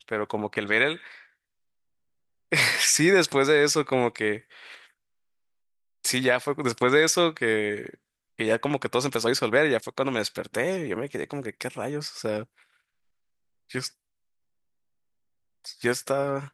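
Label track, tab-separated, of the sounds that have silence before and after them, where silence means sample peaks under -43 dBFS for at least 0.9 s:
2.520000	4.850000	sound
6.040000	12.440000	sound
13.700000	13.880000	sound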